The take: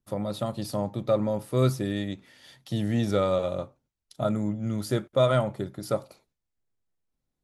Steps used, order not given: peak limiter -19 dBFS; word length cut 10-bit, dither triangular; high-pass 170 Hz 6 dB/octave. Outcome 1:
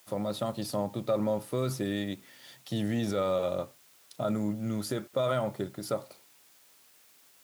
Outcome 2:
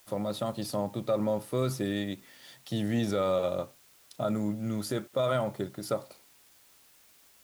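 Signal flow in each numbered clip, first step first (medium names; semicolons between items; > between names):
peak limiter > word length cut > high-pass; high-pass > peak limiter > word length cut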